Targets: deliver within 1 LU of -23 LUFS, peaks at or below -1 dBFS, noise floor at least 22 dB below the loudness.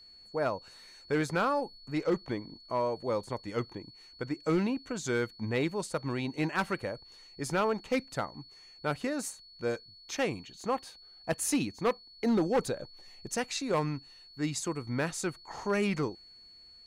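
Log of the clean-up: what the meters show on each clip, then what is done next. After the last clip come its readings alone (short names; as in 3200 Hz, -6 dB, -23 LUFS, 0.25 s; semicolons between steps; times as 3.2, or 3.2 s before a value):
clipped 0.7%; flat tops at -21.5 dBFS; steady tone 4400 Hz; tone level -52 dBFS; loudness -33.0 LUFS; peak -21.5 dBFS; loudness target -23.0 LUFS
-> clip repair -21.5 dBFS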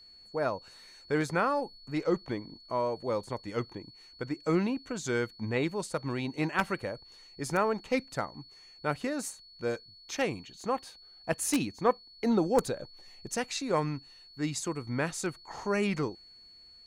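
clipped 0.0%; steady tone 4400 Hz; tone level -52 dBFS
-> notch 4400 Hz, Q 30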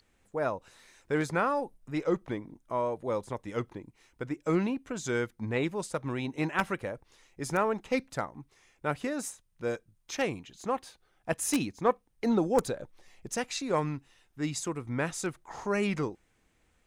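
steady tone none; loudness -32.5 LUFS; peak -12.5 dBFS; loudness target -23.0 LUFS
-> gain +9.5 dB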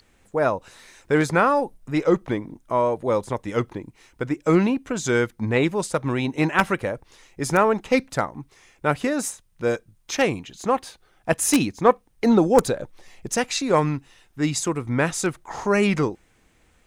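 loudness -23.0 LUFS; peak -3.0 dBFS; noise floor -61 dBFS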